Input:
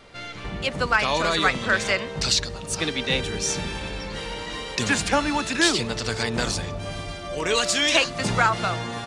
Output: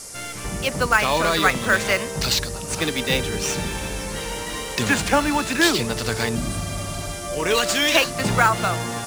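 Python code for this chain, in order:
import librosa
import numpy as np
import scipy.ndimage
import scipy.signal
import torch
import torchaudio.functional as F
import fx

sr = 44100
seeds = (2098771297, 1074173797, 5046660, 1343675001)

p1 = fx.spec_repair(x, sr, seeds[0], start_s=6.38, length_s=0.69, low_hz=350.0, high_hz=7900.0, source='after')
p2 = fx.sample_hold(p1, sr, seeds[1], rate_hz=8500.0, jitter_pct=0)
p3 = p1 + (p2 * 10.0 ** (-7.0 / 20.0))
y = fx.dmg_noise_band(p3, sr, seeds[2], low_hz=4800.0, high_hz=11000.0, level_db=-38.0)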